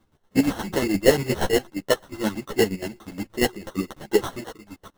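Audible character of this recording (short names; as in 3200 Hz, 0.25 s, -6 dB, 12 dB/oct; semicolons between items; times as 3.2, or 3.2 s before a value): chopped level 8.5 Hz, depth 65%, duty 35%; aliases and images of a low sample rate 2400 Hz, jitter 0%; a shimmering, thickened sound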